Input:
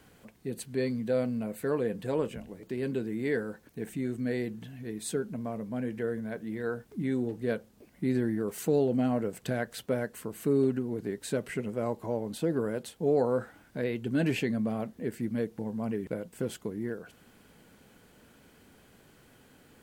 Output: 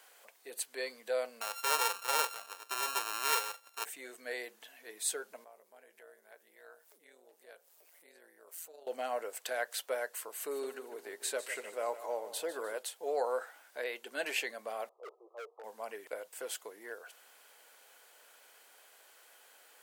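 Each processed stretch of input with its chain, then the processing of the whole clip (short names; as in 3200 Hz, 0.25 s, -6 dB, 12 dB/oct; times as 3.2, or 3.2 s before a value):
1.41–3.85 sample sorter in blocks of 32 samples + low shelf 160 Hz -10 dB + notch 4500 Hz, Q 24
5.44–8.87 high shelf 7800 Hz +9 dB + compressor 2:1, threshold -55 dBFS + AM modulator 170 Hz, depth 45%
10.36–12.78 low shelf 160 Hz +4.5 dB + feedback echo 0.151 s, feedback 52%, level -13.5 dB
14.89–15.64 brick-wall FIR band-pass 340–1300 Hz + hard clip -36 dBFS
whole clip: HPF 570 Hz 24 dB/oct; high shelf 4900 Hz +6 dB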